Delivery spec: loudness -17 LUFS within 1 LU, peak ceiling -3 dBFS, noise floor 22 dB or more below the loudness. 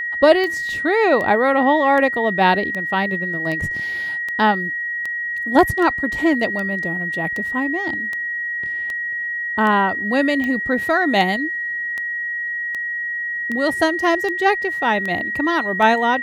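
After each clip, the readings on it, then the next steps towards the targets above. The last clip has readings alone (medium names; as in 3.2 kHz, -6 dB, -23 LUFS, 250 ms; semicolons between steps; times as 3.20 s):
clicks found 21; steady tone 1.9 kHz; tone level -22 dBFS; loudness -19.0 LUFS; peak level -2.0 dBFS; loudness target -17.0 LUFS
-> de-click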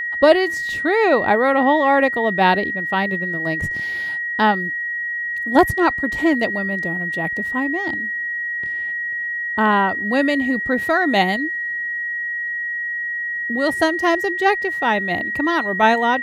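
clicks found 0; steady tone 1.9 kHz; tone level -22 dBFS
-> band-stop 1.9 kHz, Q 30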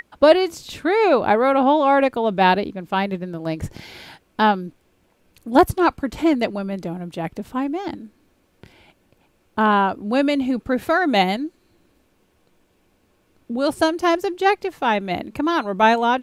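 steady tone not found; loudness -20.0 LUFS; peak level -2.5 dBFS; loudness target -17.0 LUFS
-> trim +3 dB; peak limiter -3 dBFS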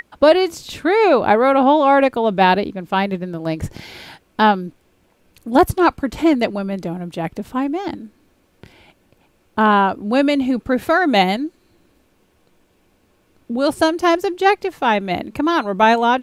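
loudness -17.5 LUFS; peak level -3.0 dBFS; noise floor -60 dBFS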